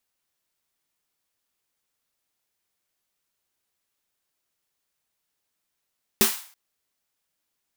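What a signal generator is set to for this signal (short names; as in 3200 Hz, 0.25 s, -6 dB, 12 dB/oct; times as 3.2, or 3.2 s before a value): snare drum length 0.33 s, tones 220 Hz, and 390 Hz, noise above 790 Hz, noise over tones 2 dB, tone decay 0.16 s, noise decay 0.46 s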